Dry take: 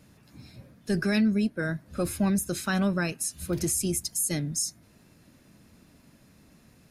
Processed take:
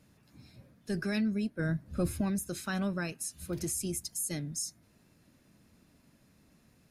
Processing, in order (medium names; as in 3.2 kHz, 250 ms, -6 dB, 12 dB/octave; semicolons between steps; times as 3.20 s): 1.59–2.21 s: bass shelf 260 Hz +11 dB; trim -7 dB